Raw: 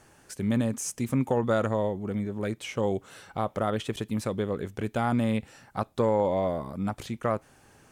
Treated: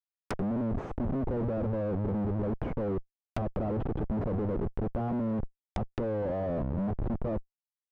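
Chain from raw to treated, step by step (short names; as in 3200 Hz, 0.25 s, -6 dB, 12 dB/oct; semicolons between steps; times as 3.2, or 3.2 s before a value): Schmitt trigger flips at -35.5 dBFS; treble ducked by the level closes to 710 Hz, closed at -29 dBFS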